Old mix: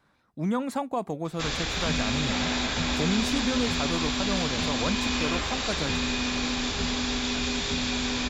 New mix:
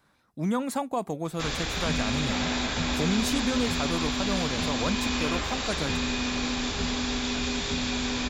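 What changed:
background: add treble shelf 3.4 kHz -7.5 dB; master: add treble shelf 6.7 kHz +10 dB

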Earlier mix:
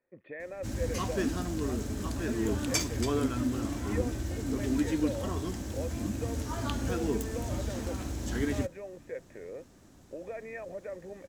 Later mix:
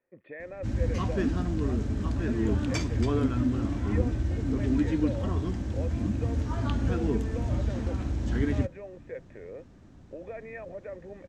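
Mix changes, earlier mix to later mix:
background: add tone controls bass +7 dB, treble -8 dB; master: add low-pass 6.8 kHz 12 dB/octave

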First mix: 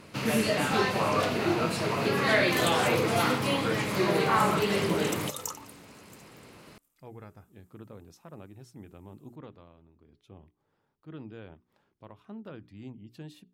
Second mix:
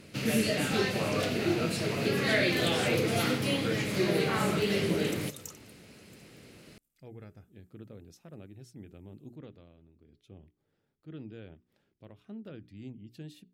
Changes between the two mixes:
second sound -8.0 dB; master: add peaking EQ 1 kHz -13 dB 0.89 oct

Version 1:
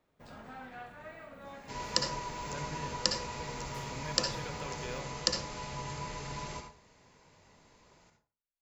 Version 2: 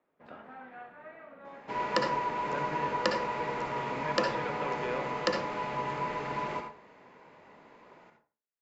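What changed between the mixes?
speech +7.5 dB; second sound +9.0 dB; master: add three-band isolator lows -20 dB, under 190 Hz, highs -24 dB, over 2.7 kHz

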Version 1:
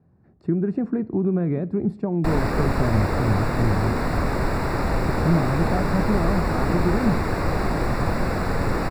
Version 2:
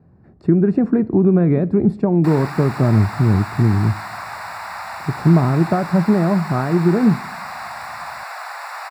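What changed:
speech +8.0 dB; background: add steep high-pass 710 Hz 48 dB/octave

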